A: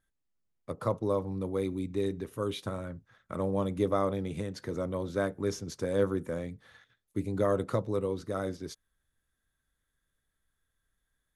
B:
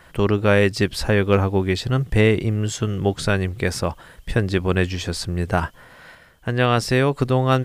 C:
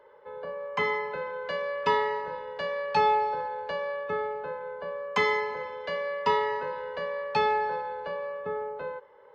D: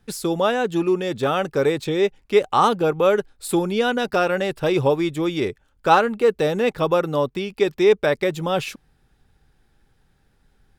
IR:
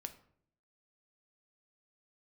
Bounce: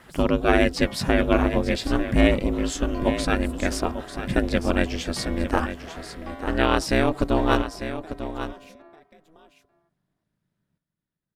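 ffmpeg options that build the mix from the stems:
-filter_complex "[0:a]volume=-14.5dB[link_01];[1:a]volume=0.5dB,asplit=2[link_02][link_03];[link_03]volume=-10.5dB[link_04];[2:a]volume=-12.5dB,asplit=2[link_05][link_06];[link_06]volume=-17dB[link_07];[3:a]acompressor=threshold=-23dB:ratio=10,volume=-15.5dB,asplit=2[link_08][link_09];[link_09]volume=-8.5dB[link_10];[link_04][link_07][link_10]amix=inputs=3:normalize=0,aecho=0:1:896:1[link_11];[link_01][link_02][link_05][link_08][link_11]amix=inputs=5:normalize=0,aeval=exprs='val(0)*sin(2*PI*160*n/s)':channel_layout=same"

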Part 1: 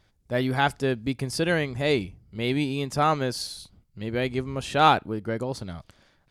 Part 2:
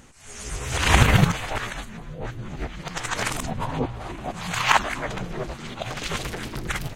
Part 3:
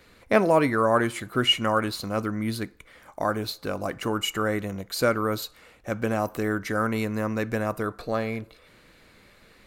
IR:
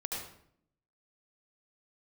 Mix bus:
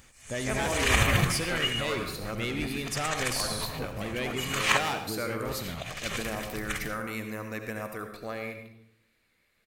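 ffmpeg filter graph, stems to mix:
-filter_complex "[0:a]asoftclip=type=tanh:threshold=-21.5dB,volume=-1.5dB,asplit=2[link_01][link_02];[link_02]volume=-14dB[link_03];[1:a]aecho=1:1:1.7:0.33,volume=-12dB,asplit=3[link_04][link_05][link_06];[link_04]atrim=end=4.79,asetpts=PTS-STARTPTS,afade=type=out:start_time=4.786:duration=0.004:curve=hsin[link_07];[link_05]atrim=start=4.79:end=5.45,asetpts=PTS-STARTPTS,volume=0[link_08];[link_06]atrim=start=5.45,asetpts=PTS-STARTPTS,afade=type=in:duration=0.004:curve=hsin[link_09];[link_07][link_08][link_09]concat=n=3:v=0:a=1,asplit=2[link_10][link_11];[link_11]volume=-12.5dB[link_12];[2:a]agate=range=-11dB:threshold=-43dB:ratio=16:detection=peak,adelay=150,volume=-13.5dB,asplit=2[link_13][link_14];[link_14]volume=-4dB[link_15];[link_01][link_13]amix=inputs=2:normalize=0,acompressor=threshold=-35dB:ratio=6,volume=0dB[link_16];[3:a]atrim=start_sample=2205[link_17];[link_03][link_12][link_15]amix=inputs=3:normalize=0[link_18];[link_18][link_17]afir=irnorm=-1:irlink=0[link_19];[link_10][link_16][link_19]amix=inputs=3:normalize=0,equalizer=frequency=2200:width=1.5:gain=6.5,crystalizer=i=1.5:c=0"

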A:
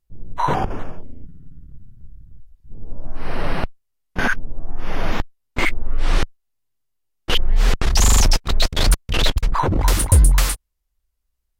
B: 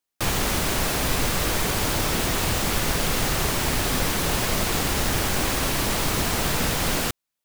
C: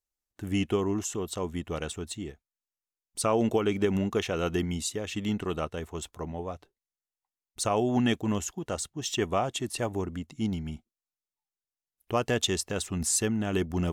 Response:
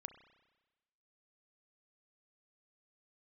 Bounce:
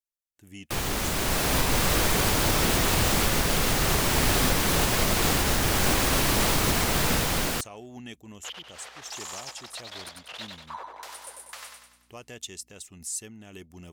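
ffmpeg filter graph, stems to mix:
-filter_complex "[0:a]highpass=frequency=580:width=0.5412,highpass=frequency=580:width=1.3066,highshelf=frequency=8300:gain=-8,aeval=exprs='val(0)+0.00316*(sin(2*PI*60*n/s)+sin(2*PI*2*60*n/s)/2+sin(2*PI*3*60*n/s)/3+sin(2*PI*4*60*n/s)/4+sin(2*PI*5*60*n/s)/5)':channel_layout=same,adelay=1150,volume=-17.5dB,asplit=2[link_01][link_02];[link_02]volume=-4dB[link_03];[1:a]dynaudnorm=framelen=170:gausssize=11:maxgain=10.5dB,adelay=500,volume=-5.5dB[link_04];[2:a]aexciter=amount=2.8:drive=3.1:freq=2000,volume=-17.5dB[link_05];[link_03]aecho=0:1:96|192|288|384|480|576|672:1|0.49|0.24|0.118|0.0576|0.0282|0.0138[link_06];[link_01][link_04][link_05][link_06]amix=inputs=4:normalize=0,alimiter=limit=-12dB:level=0:latency=1:release=389"

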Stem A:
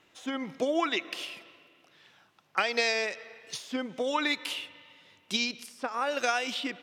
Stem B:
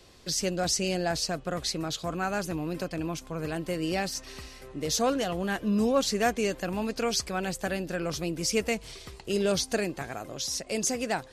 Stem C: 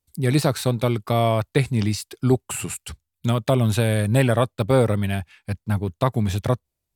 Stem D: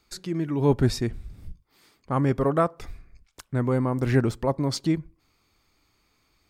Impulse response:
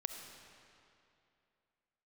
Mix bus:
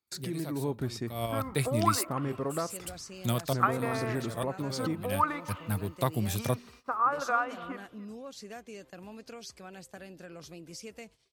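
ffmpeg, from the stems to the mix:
-filter_complex "[0:a]lowpass=frequency=1200:width_type=q:width=5.5,bandreject=frequency=60:width_type=h:width=6,bandreject=frequency=120:width_type=h:width=6,bandreject=frequency=180:width_type=h:width=6,bandreject=frequency=240:width_type=h:width=6,adelay=1050,volume=-6dB,asplit=2[link_01][link_02];[link_02]volume=-17dB[link_03];[1:a]acompressor=threshold=-29dB:ratio=3,adelay=2300,volume=-13dB[link_04];[2:a]aemphasis=mode=production:type=50fm,volume=-8dB[link_05];[3:a]highpass=frequency=82:poles=1,acompressor=threshold=-33dB:ratio=2.5,volume=-1dB,asplit=2[link_06][link_07];[link_07]apad=whole_len=306718[link_08];[link_05][link_08]sidechaincompress=threshold=-48dB:ratio=12:attack=8:release=160[link_09];[link_03]aecho=0:1:284:1[link_10];[link_01][link_04][link_09][link_06][link_10]amix=inputs=5:normalize=0,agate=range=-22dB:threshold=-53dB:ratio=16:detection=peak,highpass=71"

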